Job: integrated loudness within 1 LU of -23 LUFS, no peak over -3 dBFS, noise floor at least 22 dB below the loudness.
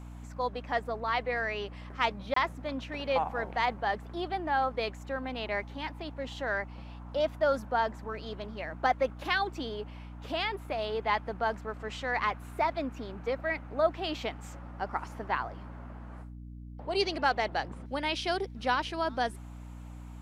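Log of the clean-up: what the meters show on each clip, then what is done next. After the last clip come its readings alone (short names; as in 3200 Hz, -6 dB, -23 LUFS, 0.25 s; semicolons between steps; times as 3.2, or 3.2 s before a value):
dropouts 1; longest dropout 24 ms; hum 60 Hz; harmonics up to 300 Hz; hum level -42 dBFS; loudness -32.5 LUFS; peak -11.5 dBFS; loudness target -23.0 LUFS
-> interpolate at 2.34, 24 ms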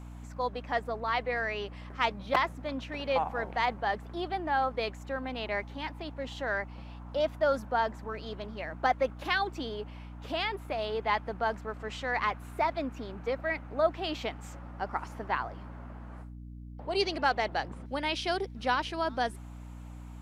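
dropouts 0; hum 60 Hz; harmonics up to 300 Hz; hum level -42 dBFS
-> de-hum 60 Hz, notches 5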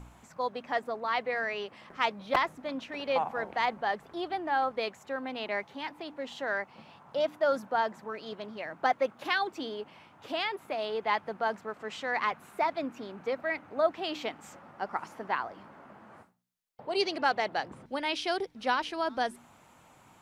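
hum none; loudness -32.5 LUFS; peak -11.0 dBFS; loudness target -23.0 LUFS
-> gain +9.5 dB; limiter -3 dBFS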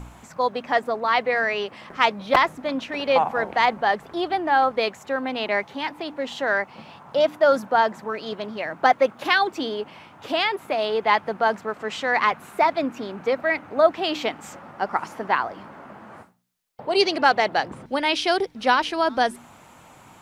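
loudness -23.0 LUFS; peak -3.0 dBFS; noise floor -49 dBFS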